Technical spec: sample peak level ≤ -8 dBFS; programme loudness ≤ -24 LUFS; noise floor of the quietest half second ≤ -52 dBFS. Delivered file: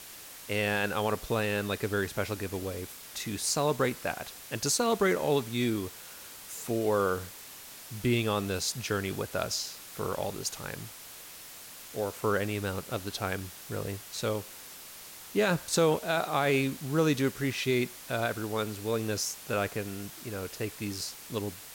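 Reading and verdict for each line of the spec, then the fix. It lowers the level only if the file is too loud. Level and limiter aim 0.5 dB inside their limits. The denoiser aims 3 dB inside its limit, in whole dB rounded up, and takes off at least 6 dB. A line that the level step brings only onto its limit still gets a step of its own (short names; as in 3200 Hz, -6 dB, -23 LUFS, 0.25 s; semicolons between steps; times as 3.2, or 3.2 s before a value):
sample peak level -15.5 dBFS: OK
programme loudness -31.0 LUFS: OK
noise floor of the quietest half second -47 dBFS: fail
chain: denoiser 8 dB, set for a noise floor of -47 dBFS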